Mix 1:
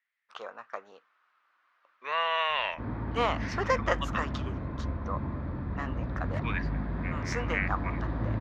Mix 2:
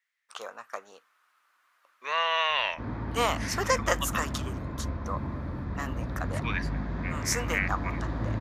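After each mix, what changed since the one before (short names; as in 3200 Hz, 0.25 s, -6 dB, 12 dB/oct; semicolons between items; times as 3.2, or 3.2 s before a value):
master: remove air absorption 220 m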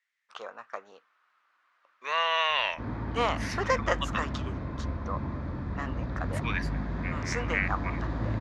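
first voice: add air absorption 160 m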